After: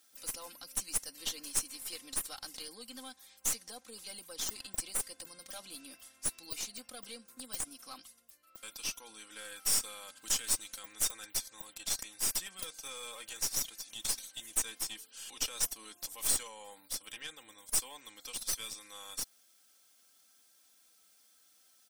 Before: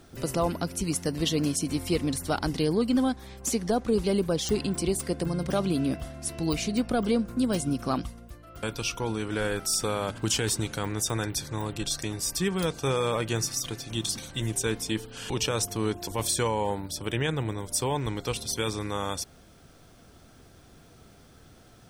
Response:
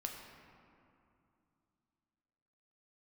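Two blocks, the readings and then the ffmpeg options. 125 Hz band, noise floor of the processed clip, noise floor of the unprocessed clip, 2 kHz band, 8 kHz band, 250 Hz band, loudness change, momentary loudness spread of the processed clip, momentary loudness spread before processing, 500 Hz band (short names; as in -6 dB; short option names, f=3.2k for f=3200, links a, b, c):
-29.0 dB, -66 dBFS, -54 dBFS, -11.0 dB, -2.0 dB, -27.5 dB, -7.5 dB, 15 LU, 6 LU, -24.5 dB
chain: -af "aderivative,aecho=1:1:3.8:0.67,aeval=exprs='0.266*(cos(1*acos(clip(val(0)/0.266,-1,1)))-cos(1*PI/2))+0.0299*(cos(8*acos(clip(val(0)/0.266,-1,1)))-cos(8*PI/2))':c=same,volume=-4dB"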